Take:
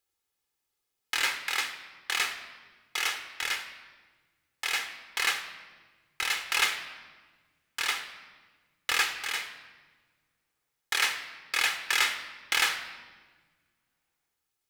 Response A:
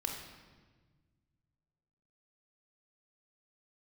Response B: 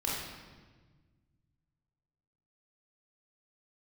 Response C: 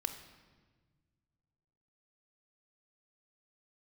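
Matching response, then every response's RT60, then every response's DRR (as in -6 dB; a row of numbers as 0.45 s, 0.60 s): C; 1.4 s, 1.4 s, 1.5 s; 1.0 dB, -6.0 dB, 7.5 dB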